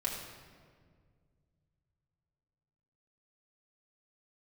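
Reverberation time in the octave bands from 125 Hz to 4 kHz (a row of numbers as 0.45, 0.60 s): 3.9, 2.7, 2.1, 1.7, 1.5, 1.2 s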